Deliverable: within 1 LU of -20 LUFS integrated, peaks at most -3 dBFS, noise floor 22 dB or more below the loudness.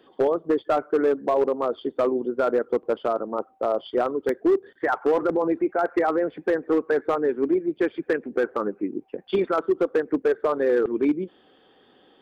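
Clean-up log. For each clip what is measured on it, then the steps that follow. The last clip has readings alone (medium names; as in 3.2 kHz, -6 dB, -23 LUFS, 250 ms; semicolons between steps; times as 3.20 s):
clipped samples 1.1%; clipping level -14.5 dBFS; dropouts 1; longest dropout 2.4 ms; loudness -24.5 LUFS; peak level -14.5 dBFS; loudness target -20.0 LUFS
-> clip repair -14.5 dBFS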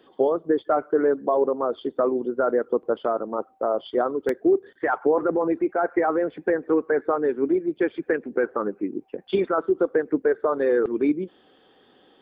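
clipped samples 0.0%; dropouts 1; longest dropout 2.4 ms
-> interpolate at 4.29 s, 2.4 ms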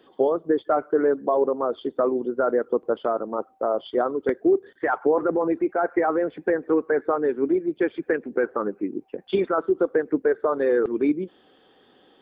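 dropouts 0; loudness -24.0 LUFS; peak level -8.5 dBFS; loudness target -20.0 LUFS
-> trim +4 dB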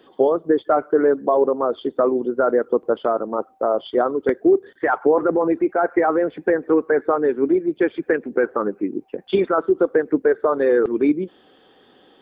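loudness -20.0 LUFS; peak level -4.5 dBFS; noise floor -55 dBFS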